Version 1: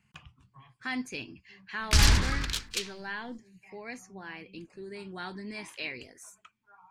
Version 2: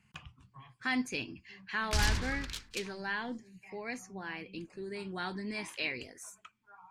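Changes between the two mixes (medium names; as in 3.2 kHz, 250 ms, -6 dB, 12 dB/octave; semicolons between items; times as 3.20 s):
background -9.0 dB; reverb: on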